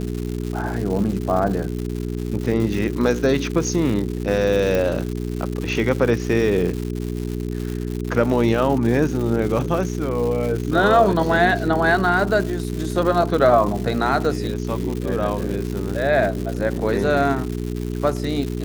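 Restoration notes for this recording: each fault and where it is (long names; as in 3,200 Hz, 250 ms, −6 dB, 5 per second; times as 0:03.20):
surface crackle 240 per second −26 dBFS
mains hum 60 Hz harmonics 7 −26 dBFS
0:04.75: click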